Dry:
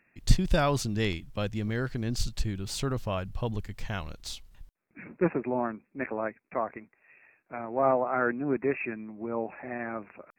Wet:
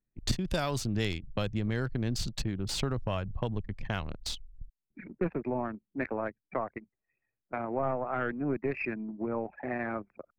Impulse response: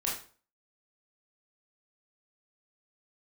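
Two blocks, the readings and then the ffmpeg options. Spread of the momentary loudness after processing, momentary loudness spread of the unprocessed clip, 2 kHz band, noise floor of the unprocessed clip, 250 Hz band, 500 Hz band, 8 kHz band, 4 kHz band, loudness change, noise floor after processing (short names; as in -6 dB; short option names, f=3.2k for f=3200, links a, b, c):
7 LU, 13 LU, -2.5 dB, -72 dBFS, -2.0 dB, -4.0 dB, -1.5 dB, 0.0 dB, -3.0 dB, under -85 dBFS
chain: -filter_complex "[0:a]anlmdn=0.631,aeval=exprs='0.376*(cos(1*acos(clip(val(0)/0.376,-1,1)))-cos(1*PI/2))+0.0668*(cos(2*acos(clip(val(0)/0.376,-1,1)))-cos(2*PI/2))':c=same,acrossover=split=120|4200[a][b][c];[a]acompressor=threshold=-41dB:ratio=4[d];[b]acompressor=threshold=-36dB:ratio=4[e];[c]acompressor=threshold=-46dB:ratio=4[f];[d][e][f]amix=inputs=3:normalize=0,volume=5.5dB"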